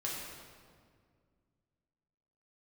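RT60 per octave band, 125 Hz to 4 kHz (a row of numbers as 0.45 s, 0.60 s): 2.8 s, 2.7 s, 2.2 s, 1.8 s, 1.5 s, 1.3 s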